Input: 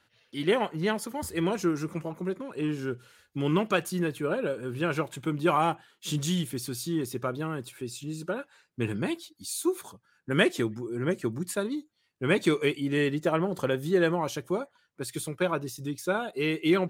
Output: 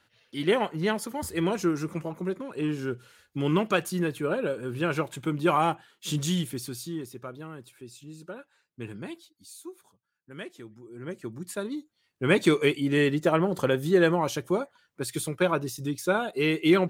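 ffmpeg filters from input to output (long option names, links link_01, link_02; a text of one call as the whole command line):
ffmpeg -i in.wav -af "volume=21dB,afade=type=out:start_time=6.38:duration=0.76:silence=0.334965,afade=type=out:start_time=9.21:duration=0.55:silence=0.375837,afade=type=in:start_time=10.62:duration=0.71:silence=0.298538,afade=type=in:start_time=11.33:duration=1.06:silence=0.334965" out.wav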